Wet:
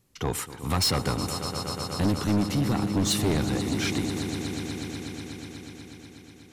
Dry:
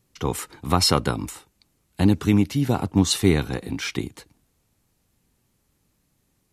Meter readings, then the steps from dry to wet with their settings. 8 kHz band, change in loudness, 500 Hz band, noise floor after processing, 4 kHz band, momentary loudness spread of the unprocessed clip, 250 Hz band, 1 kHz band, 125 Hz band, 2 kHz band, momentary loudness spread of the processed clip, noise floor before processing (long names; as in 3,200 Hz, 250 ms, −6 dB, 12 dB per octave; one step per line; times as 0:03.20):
−2.0 dB, −5.0 dB, −4.0 dB, −50 dBFS, −2.5 dB, 12 LU, −4.0 dB, −3.5 dB, −3.5 dB, −2.0 dB, 17 LU, −70 dBFS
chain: echo that builds up and dies away 122 ms, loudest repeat 5, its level −16.5 dB
soft clipping −19 dBFS, distortion −7 dB